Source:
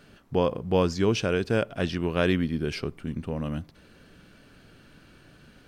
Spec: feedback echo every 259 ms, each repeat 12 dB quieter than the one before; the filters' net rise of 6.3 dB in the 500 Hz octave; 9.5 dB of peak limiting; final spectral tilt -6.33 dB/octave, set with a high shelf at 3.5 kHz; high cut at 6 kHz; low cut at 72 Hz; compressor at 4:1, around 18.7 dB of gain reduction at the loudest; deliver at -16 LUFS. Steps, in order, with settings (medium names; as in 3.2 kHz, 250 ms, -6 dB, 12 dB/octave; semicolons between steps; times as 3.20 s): high-pass 72 Hz; low-pass 6 kHz; peaking EQ 500 Hz +7.5 dB; treble shelf 3.5 kHz -7.5 dB; compression 4:1, threshold -37 dBFS; peak limiter -31 dBFS; feedback delay 259 ms, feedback 25%, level -12 dB; trim +28 dB